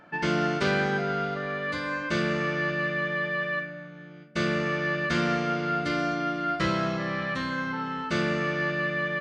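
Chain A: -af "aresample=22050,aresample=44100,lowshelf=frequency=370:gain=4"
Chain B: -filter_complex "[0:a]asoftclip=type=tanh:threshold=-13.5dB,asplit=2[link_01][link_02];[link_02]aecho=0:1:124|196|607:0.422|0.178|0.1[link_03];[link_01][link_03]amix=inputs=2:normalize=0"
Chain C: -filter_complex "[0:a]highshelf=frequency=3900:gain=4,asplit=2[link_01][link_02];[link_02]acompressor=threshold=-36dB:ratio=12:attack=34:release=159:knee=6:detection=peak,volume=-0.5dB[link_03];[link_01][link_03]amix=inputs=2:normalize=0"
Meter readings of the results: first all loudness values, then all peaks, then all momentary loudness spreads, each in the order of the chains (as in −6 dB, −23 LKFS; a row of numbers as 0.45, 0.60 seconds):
−26.5, −27.0, −25.0 LKFS; −10.5, −14.5, −10.5 dBFS; 6, 5, 4 LU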